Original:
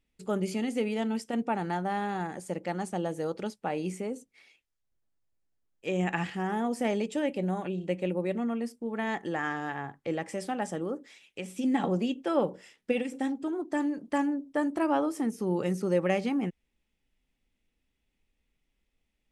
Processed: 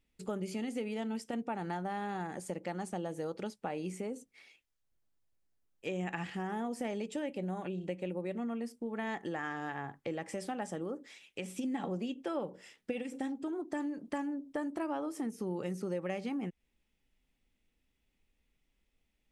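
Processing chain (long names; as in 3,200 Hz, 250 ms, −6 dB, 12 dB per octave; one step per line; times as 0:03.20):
downward compressor 3 to 1, threshold −36 dBFS, peak gain reduction 11.5 dB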